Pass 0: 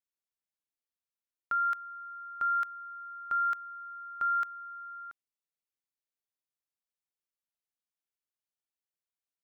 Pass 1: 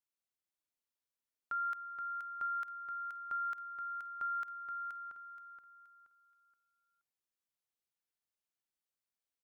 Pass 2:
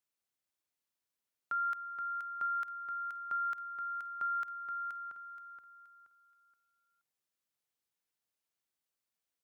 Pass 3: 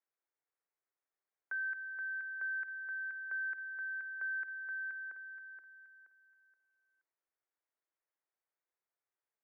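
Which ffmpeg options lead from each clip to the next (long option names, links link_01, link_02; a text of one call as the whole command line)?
ffmpeg -i in.wav -af "alimiter=level_in=6.5dB:limit=-24dB:level=0:latency=1,volume=-6.5dB,aecho=1:1:475|950|1425|1900:0.473|0.147|0.0455|0.0141,volume=-2dB" out.wav
ffmpeg -i in.wav -af "highpass=frequency=57:width=0.5412,highpass=frequency=57:width=1.3066,volume=2.5dB" out.wav
ffmpeg -i in.wav -af "asoftclip=type=tanh:threshold=-34dB,highpass=frequency=150:width_type=q:width=0.5412,highpass=frequency=150:width_type=q:width=1.307,lowpass=frequency=2000:width_type=q:width=0.5176,lowpass=frequency=2000:width_type=q:width=0.7071,lowpass=frequency=2000:width_type=q:width=1.932,afreqshift=160" out.wav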